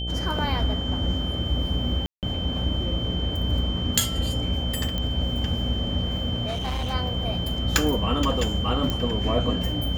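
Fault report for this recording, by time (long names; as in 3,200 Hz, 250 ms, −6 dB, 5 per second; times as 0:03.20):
mains buzz 60 Hz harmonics 13 −30 dBFS
whistle 3,100 Hz −31 dBFS
0:02.06–0:02.23: drop-out 168 ms
0:04.98: click −15 dBFS
0:06.47–0:06.94: clipping −24.5 dBFS
0:08.90: click −12 dBFS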